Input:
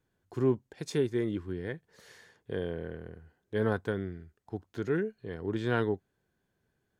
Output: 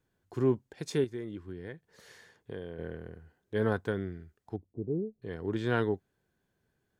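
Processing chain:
0:01.04–0:02.79: downward compressor 2 to 1, threshold −42 dBFS, peak gain reduction 9 dB
0:04.56–0:05.22: Gaussian smoothing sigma 16 samples

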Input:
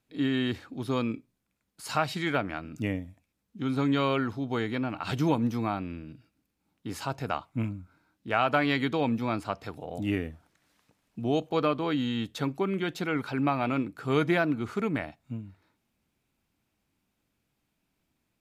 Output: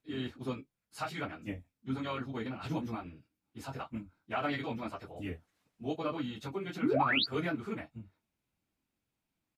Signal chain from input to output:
ambience of single reflections 23 ms −9 dB, 45 ms −9.5 dB
sound drawn into the spectrogram rise, 0:13.13–0:13.95, 220–4,800 Hz −19 dBFS
time stretch by phase vocoder 0.52×
level −6 dB

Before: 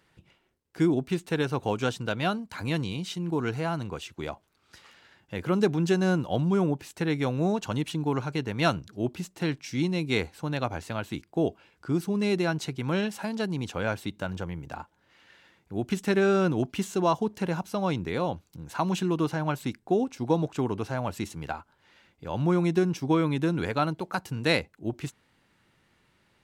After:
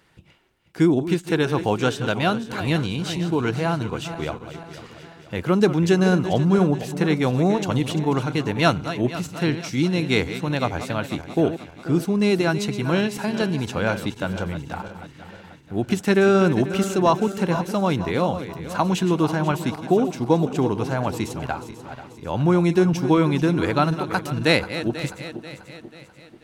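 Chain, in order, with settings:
feedback delay that plays each chunk backwards 244 ms, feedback 68%, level −11.5 dB
level +6 dB

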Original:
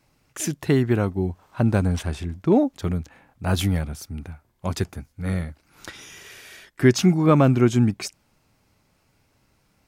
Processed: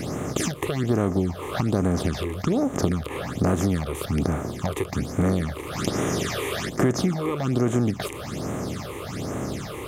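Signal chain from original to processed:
compressor on every frequency bin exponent 0.4
downward compressor 6 to 1, threshold −20 dBFS, peak gain reduction 11.5 dB
all-pass phaser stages 8, 1.2 Hz, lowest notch 190–4,700 Hz
level +1 dB

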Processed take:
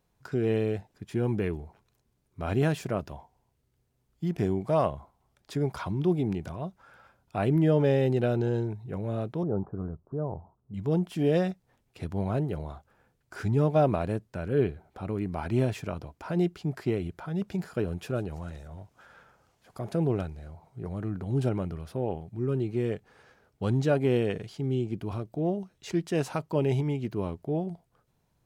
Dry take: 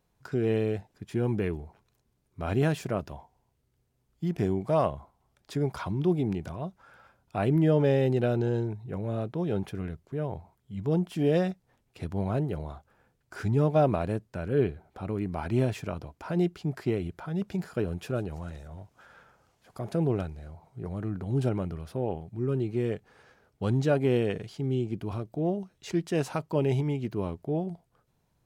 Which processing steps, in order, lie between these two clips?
0:09.43–0:10.74: Butterworth low-pass 1,300 Hz 48 dB per octave

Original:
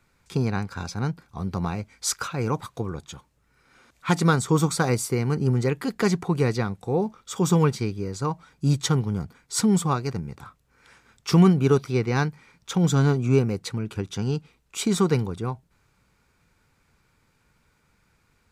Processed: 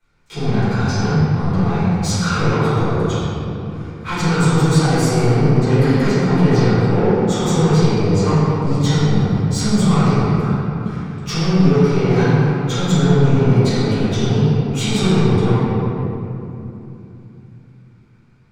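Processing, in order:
brickwall limiter −18 dBFS, peak gain reduction 10.5 dB
leveller curve on the samples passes 2
convolution reverb RT60 3.1 s, pre-delay 3 ms, DRR −16 dB
level −11 dB

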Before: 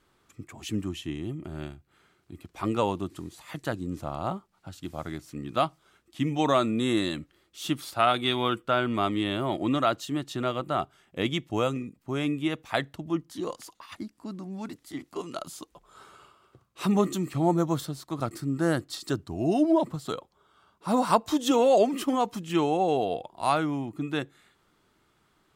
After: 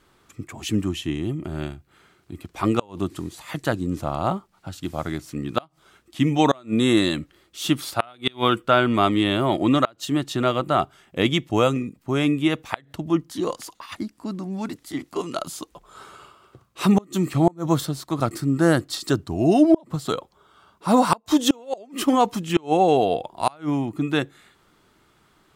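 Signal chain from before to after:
gate with flip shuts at −13 dBFS, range −30 dB
level +7.5 dB

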